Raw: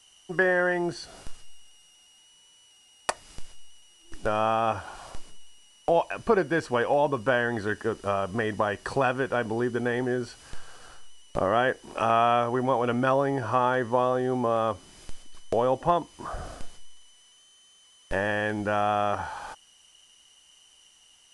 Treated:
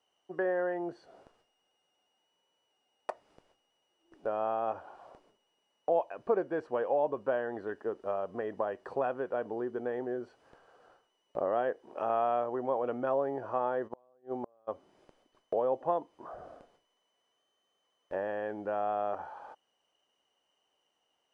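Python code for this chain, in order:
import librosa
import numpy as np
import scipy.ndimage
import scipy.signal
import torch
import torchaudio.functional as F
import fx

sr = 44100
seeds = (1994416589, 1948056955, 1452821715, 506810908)

y = fx.bandpass_q(x, sr, hz=540.0, q=1.2)
y = fx.gate_flip(y, sr, shuts_db=-19.0, range_db=-35, at=(13.87, 14.67), fade=0.02)
y = y * librosa.db_to_amplitude(-4.5)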